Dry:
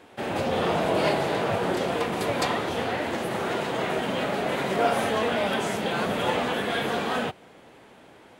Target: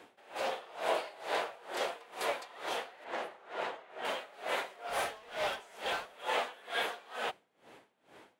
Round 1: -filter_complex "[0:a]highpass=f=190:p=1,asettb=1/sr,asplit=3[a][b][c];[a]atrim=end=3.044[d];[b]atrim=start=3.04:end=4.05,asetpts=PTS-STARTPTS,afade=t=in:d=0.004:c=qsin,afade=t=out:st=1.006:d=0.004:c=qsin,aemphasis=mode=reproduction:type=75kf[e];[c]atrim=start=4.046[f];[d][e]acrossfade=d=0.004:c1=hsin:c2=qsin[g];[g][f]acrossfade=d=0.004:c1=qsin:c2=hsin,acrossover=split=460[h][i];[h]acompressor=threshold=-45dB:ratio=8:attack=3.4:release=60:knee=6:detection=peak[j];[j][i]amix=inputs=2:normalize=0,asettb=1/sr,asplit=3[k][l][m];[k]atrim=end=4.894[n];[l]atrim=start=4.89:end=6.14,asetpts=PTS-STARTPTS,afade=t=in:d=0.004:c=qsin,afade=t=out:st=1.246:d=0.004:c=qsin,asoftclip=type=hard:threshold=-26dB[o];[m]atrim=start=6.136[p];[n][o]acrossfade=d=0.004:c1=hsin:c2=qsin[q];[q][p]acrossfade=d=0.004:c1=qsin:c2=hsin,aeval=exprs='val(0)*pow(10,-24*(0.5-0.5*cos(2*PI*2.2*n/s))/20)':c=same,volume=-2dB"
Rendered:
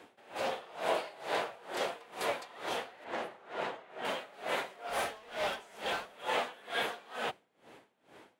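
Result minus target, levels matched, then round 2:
compressor: peak gain reduction -9 dB
-filter_complex "[0:a]highpass=f=190:p=1,asettb=1/sr,asplit=3[a][b][c];[a]atrim=end=3.044[d];[b]atrim=start=3.04:end=4.05,asetpts=PTS-STARTPTS,afade=t=in:d=0.004:c=qsin,afade=t=out:st=1.006:d=0.004:c=qsin,aemphasis=mode=reproduction:type=75kf[e];[c]atrim=start=4.046[f];[d][e]acrossfade=d=0.004:c1=hsin:c2=qsin[g];[g][f]acrossfade=d=0.004:c1=qsin:c2=hsin,acrossover=split=460[h][i];[h]acompressor=threshold=-55dB:ratio=8:attack=3.4:release=60:knee=6:detection=peak[j];[j][i]amix=inputs=2:normalize=0,asettb=1/sr,asplit=3[k][l][m];[k]atrim=end=4.894[n];[l]atrim=start=4.89:end=6.14,asetpts=PTS-STARTPTS,afade=t=in:d=0.004:c=qsin,afade=t=out:st=1.246:d=0.004:c=qsin,asoftclip=type=hard:threshold=-26dB[o];[m]atrim=start=6.136[p];[n][o]acrossfade=d=0.004:c1=hsin:c2=qsin[q];[q][p]acrossfade=d=0.004:c1=qsin:c2=hsin,aeval=exprs='val(0)*pow(10,-24*(0.5-0.5*cos(2*PI*2.2*n/s))/20)':c=same,volume=-2dB"

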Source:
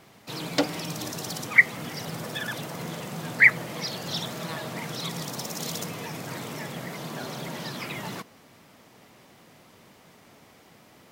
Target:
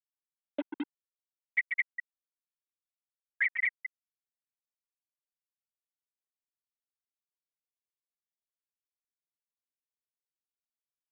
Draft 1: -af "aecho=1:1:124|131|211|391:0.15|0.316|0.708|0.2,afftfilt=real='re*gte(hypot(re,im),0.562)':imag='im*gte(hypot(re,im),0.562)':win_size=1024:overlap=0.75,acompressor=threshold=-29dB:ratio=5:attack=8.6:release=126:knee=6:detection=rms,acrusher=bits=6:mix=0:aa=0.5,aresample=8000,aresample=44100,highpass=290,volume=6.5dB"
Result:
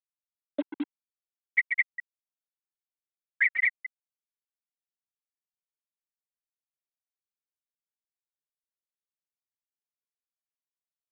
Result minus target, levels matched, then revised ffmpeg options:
compressor: peak gain reduction -5 dB
-af "aecho=1:1:124|131|211|391:0.15|0.316|0.708|0.2,afftfilt=real='re*gte(hypot(re,im),0.562)':imag='im*gte(hypot(re,im),0.562)':win_size=1024:overlap=0.75,acompressor=threshold=-35dB:ratio=5:attack=8.6:release=126:knee=6:detection=rms,acrusher=bits=6:mix=0:aa=0.5,aresample=8000,aresample=44100,highpass=290,volume=6.5dB"

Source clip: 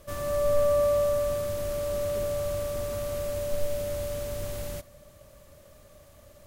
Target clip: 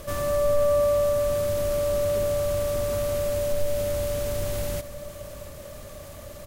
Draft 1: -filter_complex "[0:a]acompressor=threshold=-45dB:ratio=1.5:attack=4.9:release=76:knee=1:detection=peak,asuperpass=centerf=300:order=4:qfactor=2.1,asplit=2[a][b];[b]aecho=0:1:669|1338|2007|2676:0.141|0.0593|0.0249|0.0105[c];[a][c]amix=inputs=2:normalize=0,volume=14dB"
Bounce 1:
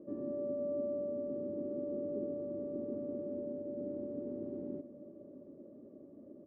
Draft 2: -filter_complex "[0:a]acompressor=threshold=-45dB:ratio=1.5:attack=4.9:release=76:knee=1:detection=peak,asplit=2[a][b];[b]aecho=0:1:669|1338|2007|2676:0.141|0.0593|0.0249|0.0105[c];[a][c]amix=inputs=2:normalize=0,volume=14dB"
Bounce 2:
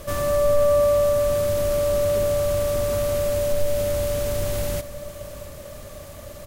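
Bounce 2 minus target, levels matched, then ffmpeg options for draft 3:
compressor: peak gain reduction -3.5 dB
-filter_complex "[0:a]acompressor=threshold=-55dB:ratio=1.5:attack=4.9:release=76:knee=1:detection=peak,asplit=2[a][b];[b]aecho=0:1:669|1338|2007|2676:0.141|0.0593|0.0249|0.0105[c];[a][c]amix=inputs=2:normalize=0,volume=14dB"

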